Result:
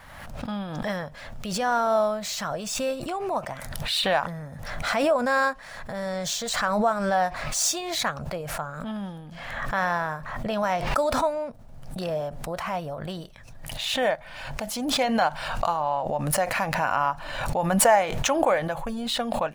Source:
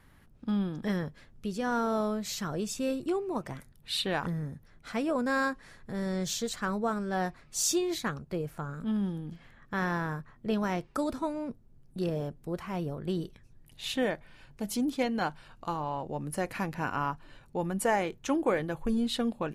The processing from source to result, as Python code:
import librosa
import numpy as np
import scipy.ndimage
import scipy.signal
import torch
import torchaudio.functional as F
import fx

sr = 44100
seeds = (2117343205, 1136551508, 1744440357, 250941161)

y = scipy.ndimage.median_filter(x, 3, mode='constant')
y = fx.low_shelf_res(y, sr, hz=490.0, db=-7.5, q=3.0)
y = fx.pre_swell(y, sr, db_per_s=39.0)
y = y * 10.0 ** (5.5 / 20.0)